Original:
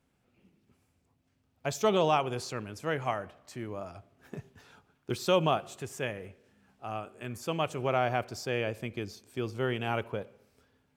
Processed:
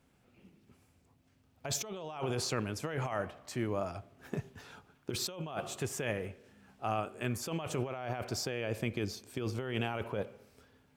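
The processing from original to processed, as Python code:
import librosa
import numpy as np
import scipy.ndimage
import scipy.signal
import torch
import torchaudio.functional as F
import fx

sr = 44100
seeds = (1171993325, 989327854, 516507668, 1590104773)

y = fx.over_compress(x, sr, threshold_db=-36.0, ratio=-1.0)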